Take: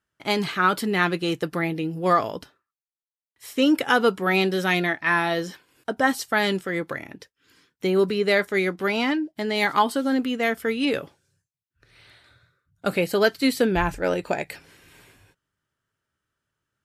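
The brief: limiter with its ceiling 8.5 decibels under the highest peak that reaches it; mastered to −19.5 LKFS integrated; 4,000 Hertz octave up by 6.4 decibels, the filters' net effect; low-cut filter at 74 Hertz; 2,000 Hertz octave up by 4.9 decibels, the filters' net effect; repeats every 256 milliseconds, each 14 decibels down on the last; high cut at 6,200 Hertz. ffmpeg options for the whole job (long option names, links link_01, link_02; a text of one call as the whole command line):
ffmpeg -i in.wav -af "highpass=74,lowpass=6200,equalizer=frequency=2000:width_type=o:gain=4.5,equalizer=frequency=4000:width_type=o:gain=7,alimiter=limit=-11dB:level=0:latency=1,aecho=1:1:256|512:0.2|0.0399,volume=3.5dB" out.wav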